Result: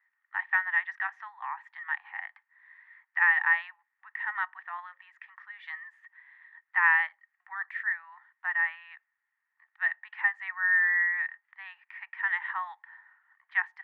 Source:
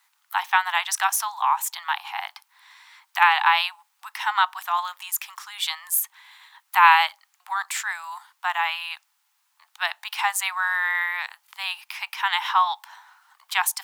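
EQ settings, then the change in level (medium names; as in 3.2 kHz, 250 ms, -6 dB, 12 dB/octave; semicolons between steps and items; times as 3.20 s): four-pole ladder low-pass 1.9 kHz, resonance 90%; hum notches 60/120/180/240/300/360/420/480/540 Hz; -5.0 dB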